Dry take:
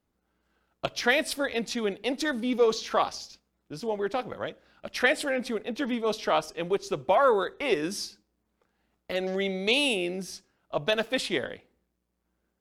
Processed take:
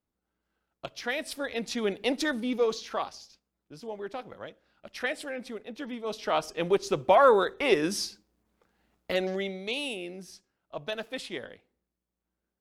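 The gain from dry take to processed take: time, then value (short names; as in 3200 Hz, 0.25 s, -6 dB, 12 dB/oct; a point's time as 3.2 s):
1.09 s -8.5 dB
2.03 s +2 dB
3.13 s -8 dB
5.98 s -8 dB
6.63 s +2.5 dB
9.14 s +2.5 dB
9.65 s -8.5 dB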